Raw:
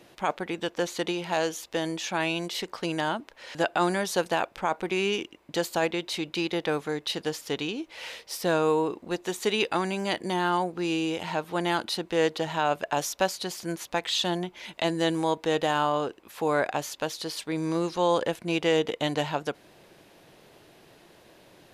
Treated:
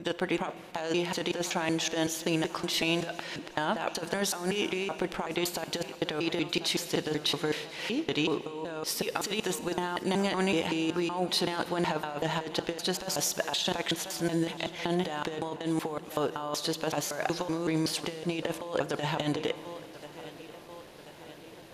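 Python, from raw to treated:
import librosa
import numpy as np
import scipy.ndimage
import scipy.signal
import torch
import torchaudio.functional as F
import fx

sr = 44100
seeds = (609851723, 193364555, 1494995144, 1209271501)

y = fx.block_reorder(x, sr, ms=188.0, group=4)
y = fx.echo_feedback(y, sr, ms=1036, feedback_pct=58, wet_db=-23.0)
y = fx.over_compress(y, sr, threshold_db=-29.0, ratio=-0.5)
y = fx.rev_schroeder(y, sr, rt60_s=2.4, comb_ms=33, drr_db=14.0)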